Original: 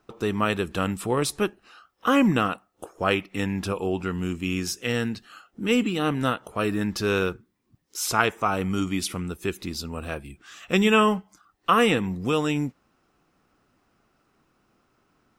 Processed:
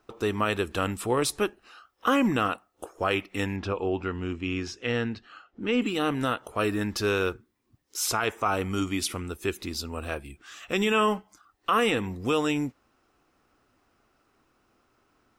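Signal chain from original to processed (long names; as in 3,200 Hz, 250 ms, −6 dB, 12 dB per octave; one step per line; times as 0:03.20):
parametric band 170 Hz −10 dB 0.54 octaves
brickwall limiter −14 dBFS, peak gain reduction 9.5 dB
0:03.56–0:05.82: high-frequency loss of the air 160 metres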